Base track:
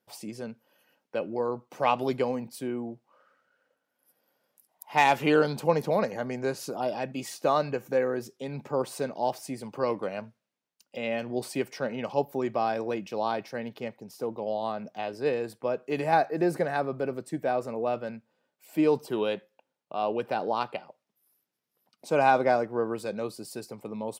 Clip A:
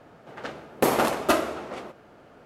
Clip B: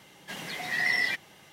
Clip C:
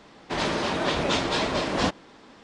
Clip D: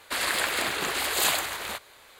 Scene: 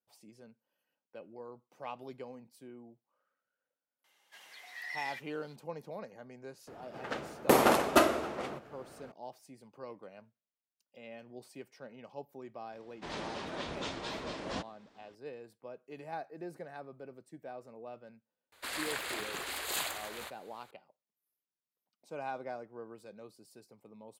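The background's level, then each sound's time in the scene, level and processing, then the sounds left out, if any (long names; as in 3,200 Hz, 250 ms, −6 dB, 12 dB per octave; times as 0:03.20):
base track −18 dB
0:04.04: mix in B −15 dB + high-pass filter 730 Hz
0:06.67: mix in A −2 dB
0:12.72: mix in C −14.5 dB
0:18.52: mix in D −11 dB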